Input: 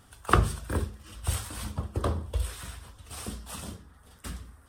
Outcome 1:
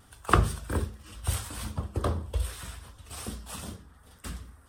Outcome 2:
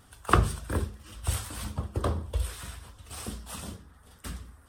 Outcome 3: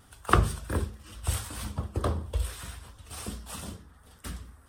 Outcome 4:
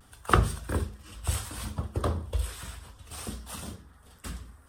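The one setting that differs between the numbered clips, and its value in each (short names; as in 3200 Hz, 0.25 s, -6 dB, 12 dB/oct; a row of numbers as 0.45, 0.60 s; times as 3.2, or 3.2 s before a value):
vibrato, rate: 2.5, 8.3, 4.5, 0.64 Hz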